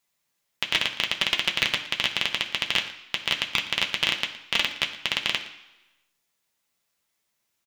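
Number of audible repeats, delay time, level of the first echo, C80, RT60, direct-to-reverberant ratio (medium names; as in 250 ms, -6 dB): 1, 116 ms, -17.0 dB, 12.0 dB, 1.0 s, 1.0 dB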